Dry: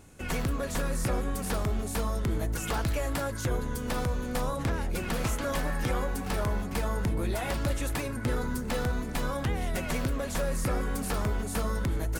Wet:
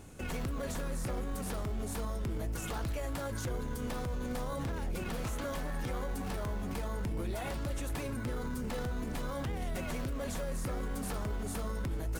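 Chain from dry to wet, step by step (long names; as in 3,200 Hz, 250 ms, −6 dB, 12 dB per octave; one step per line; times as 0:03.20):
in parallel at −9 dB: decimation without filtering 17×
on the sum: brickwall limiter −29 dBFS, peak gain reduction 11 dB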